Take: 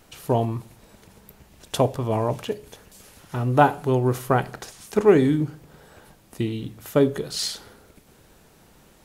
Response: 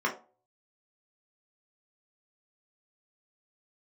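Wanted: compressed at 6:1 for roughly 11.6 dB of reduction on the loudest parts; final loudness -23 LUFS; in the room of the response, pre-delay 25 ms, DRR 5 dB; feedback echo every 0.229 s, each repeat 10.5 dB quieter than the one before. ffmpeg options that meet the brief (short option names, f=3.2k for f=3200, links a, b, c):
-filter_complex "[0:a]acompressor=threshold=-23dB:ratio=6,aecho=1:1:229|458|687:0.299|0.0896|0.0269,asplit=2[a][b];[1:a]atrim=start_sample=2205,adelay=25[c];[b][c]afir=irnorm=-1:irlink=0,volume=-15.5dB[d];[a][d]amix=inputs=2:normalize=0,volume=5.5dB"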